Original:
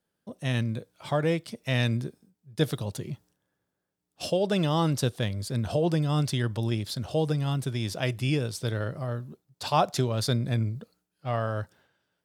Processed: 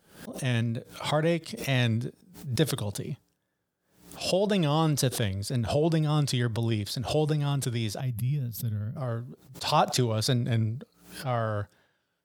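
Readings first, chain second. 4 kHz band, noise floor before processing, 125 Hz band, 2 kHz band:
+1.5 dB, −83 dBFS, +0.5 dB, 0.0 dB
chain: gain on a spectral selection 0:08.01–0:08.97, 250–11,000 Hz −18 dB
tape wow and flutter 61 cents
background raised ahead of every attack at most 110 dB per second

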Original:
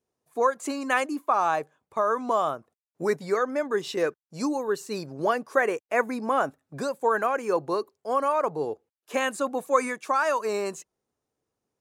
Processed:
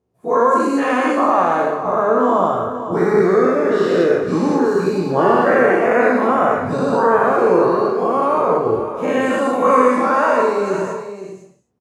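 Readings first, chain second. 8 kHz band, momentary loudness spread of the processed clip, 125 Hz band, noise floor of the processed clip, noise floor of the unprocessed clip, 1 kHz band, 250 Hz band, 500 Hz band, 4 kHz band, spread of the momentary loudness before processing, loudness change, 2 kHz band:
can't be measured, 7 LU, +16.0 dB, −45 dBFS, below −85 dBFS, +10.0 dB, +14.5 dB, +12.0 dB, +4.0 dB, 8 LU, +11.0 dB, +8.0 dB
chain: every bin's largest magnitude spread in time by 240 ms
high-pass filter 84 Hz
spectral tilt −3.5 dB per octave
on a send: single-tap delay 506 ms −11 dB
on the sum: reverb whose tail is shaped and stops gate 290 ms falling, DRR 1.5 dB
level −1 dB

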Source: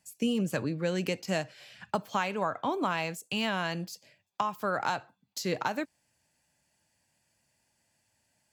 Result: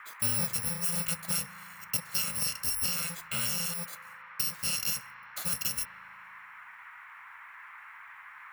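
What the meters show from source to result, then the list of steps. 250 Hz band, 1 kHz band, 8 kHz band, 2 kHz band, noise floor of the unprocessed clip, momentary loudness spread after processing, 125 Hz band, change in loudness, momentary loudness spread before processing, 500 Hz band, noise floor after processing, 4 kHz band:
−11.0 dB, −11.5 dB, +14.0 dB, −3.5 dB, −75 dBFS, 19 LU, −3.0 dB, +2.0 dB, 12 LU, −16.0 dB, −50 dBFS, +3.0 dB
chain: samples in bit-reversed order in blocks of 128 samples
spring reverb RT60 2.6 s, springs 37 ms, DRR 17 dB
noise in a band 940–2,200 Hz −48 dBFS
level −1 dB

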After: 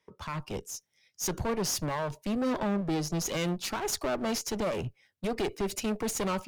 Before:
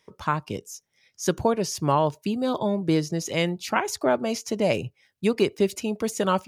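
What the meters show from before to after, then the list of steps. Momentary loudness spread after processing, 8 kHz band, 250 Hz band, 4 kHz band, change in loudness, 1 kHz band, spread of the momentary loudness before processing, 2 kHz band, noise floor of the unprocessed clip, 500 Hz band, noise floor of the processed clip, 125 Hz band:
9 LU, 0.0 dB, −6.0 dB, −3.5 dB, −6.5 dB, −8.5 dB, 6 LU, −6.5 dB, −71 dBFS, −8.0 dB, −76 dBFS, −6.0 dB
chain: brickwall limiter −18 dBFS, peak gain reduction 11 dB
asymmetric clip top −37.5 dBFS, bottom −23.5 dBFS
multiband upward and downward expander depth 40%
level +2 dB

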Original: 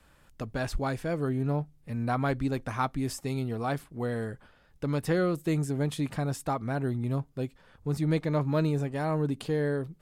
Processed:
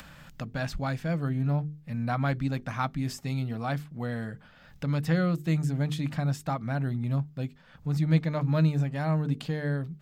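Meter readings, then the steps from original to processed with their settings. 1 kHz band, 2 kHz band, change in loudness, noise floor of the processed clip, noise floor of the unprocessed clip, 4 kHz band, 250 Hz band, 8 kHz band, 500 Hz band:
−1.5 dB, +1.0 dB, +1.0 dB, −55 dBFS, −61 dBFS, +1.0 dB, +0.5 dB, −3.5 dB, −4.5 dB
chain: graphic EQ with 15 bands 160 Hz +9 dB, 400 Hz −11 dB, 1,000 Hz −4 dB, 10,000 Hz −11 dB
upward compression, threshold −36 dBFS
low-shelf EQ 140 Hz −7 dB
mains-hum notches 50/100/150/200/250/300/350/400/450 Hz
level +2 dB

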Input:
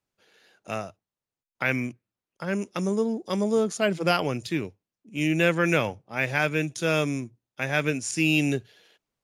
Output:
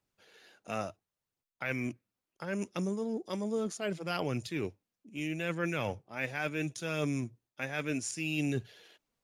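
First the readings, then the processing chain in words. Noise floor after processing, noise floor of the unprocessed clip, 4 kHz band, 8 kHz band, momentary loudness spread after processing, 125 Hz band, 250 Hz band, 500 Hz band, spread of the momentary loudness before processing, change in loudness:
below −85 dBFS, below −85 dBFS, −10.0 dB, −7.0 dB, 8 LU, −8.0 dB, −8.5 dB, −10.0 dB, 12 LU, −9.5 dB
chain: reversed playback
downward compressor, threshold −31 dBFS, peak gain reduction 14 dB
reversed playback
phase shifter 0.71 Hz, delay 4.4 ms, feedback 27%

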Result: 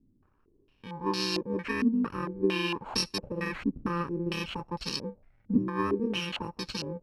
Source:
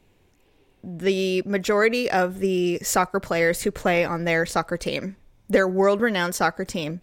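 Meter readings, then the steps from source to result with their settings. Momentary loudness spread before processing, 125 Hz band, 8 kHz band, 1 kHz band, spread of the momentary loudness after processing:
8 LU, −6.0 dB, −12.5 dB, −10.5 dB, 8 LU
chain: samples in bit-reversed order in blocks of 64 samples
low-pass on a step sequencer 4.4 Hz 260–4,500 Hz
level −6.5 dB

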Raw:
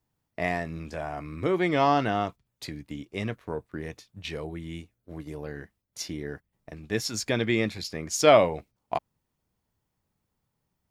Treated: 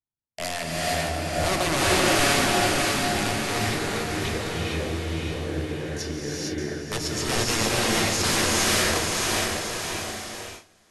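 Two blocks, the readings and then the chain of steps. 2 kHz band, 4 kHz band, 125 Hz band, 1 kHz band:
+8.5 dB, +11.5 dB, +6.0 dB, +3.0 dB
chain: wrap-around overflow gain 21.5 dB
feedback delay with all-pass diffusion 604 ms, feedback 52%, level −3 dB
noise gate with hold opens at −29 dBFS
linear-phase brick-wall low-pass 12,000 Hz
reverb whose tail is shaped and stops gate 490 ms rising, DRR −5 dB

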